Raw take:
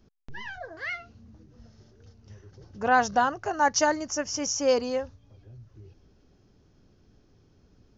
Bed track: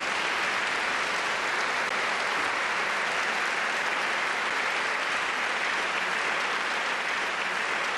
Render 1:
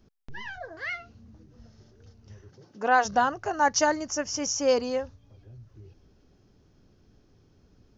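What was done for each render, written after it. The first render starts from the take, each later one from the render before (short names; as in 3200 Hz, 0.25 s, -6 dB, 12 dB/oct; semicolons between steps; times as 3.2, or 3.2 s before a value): 2.48–3.04 HPF 96 Hz -> 350 Hz 24 dB/oct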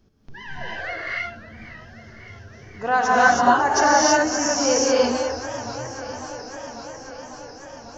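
non-linear reverb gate 0.35 s rising, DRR -7 dB; warbling echo 0.547 s, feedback 76%, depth 171 cents, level -15 dB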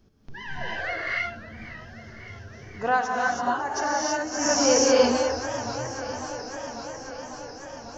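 2.87–4.52 dip -9.5 dB, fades 0.21 s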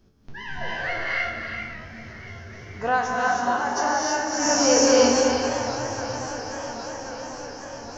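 spectral trails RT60 0.37 s; non-linear reverb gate 0.43 s rising, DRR 4.5 dB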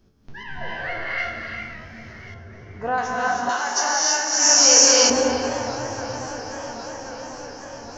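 0.43–1.18 air absorption 130 m; 2.34–2.98 high shelf 2300 Hz -11.5 dB; 3.49–5.1 tilt +4 dB/oct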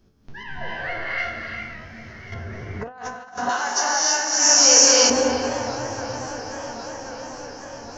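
2.32–3.38 negative-ratio compressor -31 dBFS, ratio -0.5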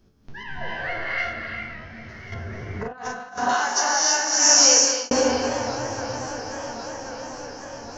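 1.33–2.09 LPF 4700 Hz; 2.8–3.66 doubler 40 ms -3 dB; 4.63–5.11 fade out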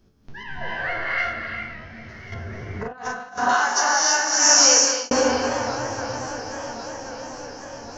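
dynamic EQ 1300 Hz, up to +5 dB, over -36 dBFS, Q 1.4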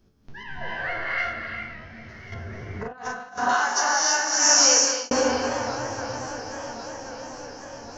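gain -2.5 dB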